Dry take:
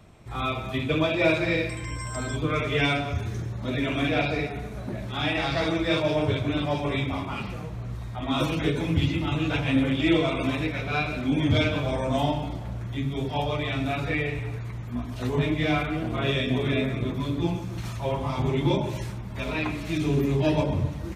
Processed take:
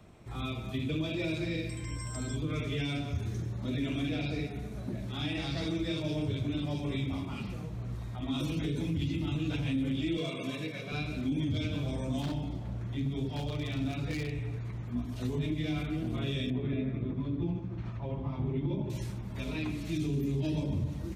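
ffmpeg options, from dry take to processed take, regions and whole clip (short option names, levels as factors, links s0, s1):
-filter_complex "[0:a]asettb=1/sr,asplit=3[s0][s1][s2];[s0]atrim=end=10.174[s3];[s1]atrim=start=10.17:end=10.92,asetpts=PTS-STARTPTS,afade=t=in:d=0.004:c=qsin,afade=t=out:st=0.746:d=0.004:c=qsin,highpass=f=160:w=0.5412,highpass=f=160:w=1.3066,asoftclip=type=hard:threshold=0.133,aecho=1:1:1.8:0.54,atrim=end_sample=33075[s4];[s2]atrim=start=10.916[s5];[s3][s4]acrossfade=d=0.004:c1=hsin:c2=qsin[s6];[s6][s5]acrossfade=d=0.004:c1=qsin:c2=hsin,asettb=1/sr,asplit=3[s7][s8][s9];[s7]atrim=end=12.214[s10];[s8]atrim=start=12.21:end=14.98,asetpts=PTS-STARTPTS,afade=t=in:d=0.004:c=qsin,afade=t=out:st=2.766:d=0.004:c=qsin,highshelf=f=8200:g=-9,aeval=exprs='0.0891*(abs(mod(val(0)/0.0891+3,4)-2)-1)':c=same[s11];[s9]atrim=start=14.976[s12];[s10][s11]acrossfade=d=0.004:c1=hsin:c2=qsin[s13];[s13][s12]acrossfade=d=0.004:c1=qsin:c2=hsin,asettb=1/sr,asplit=3[s14][s15][s16];[s14]atrim=end=16.504[s17];[s15]atrim=start=16.5:end=18.9,asetpts=PTS-STARTPTS,afade=t=in:d=0.004:c=qsin,afade=t=out:st=2.396:d=0.004:c=qsin,lowpass=2000,tremolo=f=13:d=0.3[s18];[s16]atrim=start=18.896[s19];[s17][s18]acrossfade=d=0.004:c1=hsin:c2=qsin[s20];[s20][s19]acrossfade=d=0.004:c1=qsin:c2=hsin,equalizer=f=300:t=o:w=1.7:g=3.5,acrossover=split=320|3000[s21][s22][s23];[s22]acompressor=threshold=0.00398:ratio=2[s24];[s21][s24][s23]amix=inputs=3:normalize=0,alimiter=limit=0.106:level=0:latency=1:release=46,volume=0.596"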